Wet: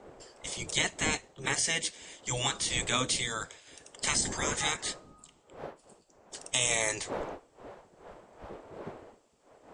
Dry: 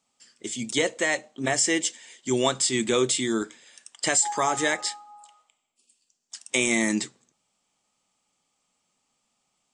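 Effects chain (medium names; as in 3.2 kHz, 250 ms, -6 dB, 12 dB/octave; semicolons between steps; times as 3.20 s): wind noise 280 Hz -37 dBFS; spectral gate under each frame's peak -10 dB weak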